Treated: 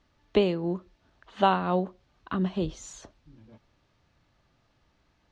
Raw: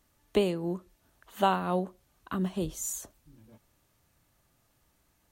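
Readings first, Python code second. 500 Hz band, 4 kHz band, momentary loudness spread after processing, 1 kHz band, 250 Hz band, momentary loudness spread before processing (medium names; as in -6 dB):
+3.0 dB, +3.0 dB, 13 LU, +3.0 dB, +3.0 dB, 13 LU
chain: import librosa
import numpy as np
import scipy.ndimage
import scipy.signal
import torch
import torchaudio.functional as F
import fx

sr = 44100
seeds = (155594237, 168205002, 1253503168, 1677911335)

y = scipy.signal.sosfilt(scipy.signal.butter(4, 5000.0, 'lowpass', fs=sr, output='sos'), x)
y = F.gain(torch.from_numpy(y), 3.0).numpy()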